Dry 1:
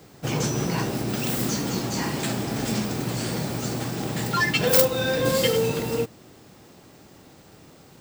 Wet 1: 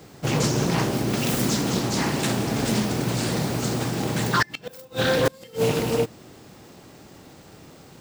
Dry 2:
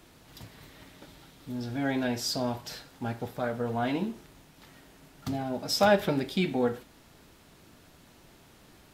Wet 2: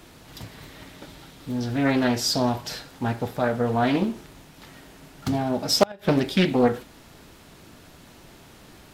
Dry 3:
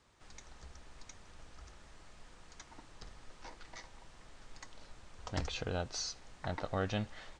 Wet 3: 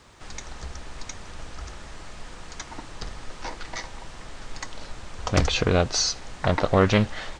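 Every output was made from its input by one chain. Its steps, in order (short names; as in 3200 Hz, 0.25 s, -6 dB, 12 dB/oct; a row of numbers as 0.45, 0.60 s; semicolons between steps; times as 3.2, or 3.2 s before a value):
flipped gate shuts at -12 dBFS, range -29 dB; Doppler distortion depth 0.39 ms; match loudness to -24 LUFS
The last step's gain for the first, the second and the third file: +3.0, +7.5, +16.0 dB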